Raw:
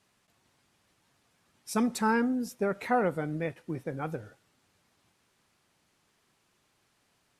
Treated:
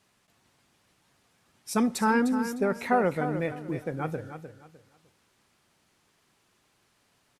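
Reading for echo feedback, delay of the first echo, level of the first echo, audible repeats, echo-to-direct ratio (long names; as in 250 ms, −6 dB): 27%, 304 ms, −10.0 dB, 3, −9.5 dB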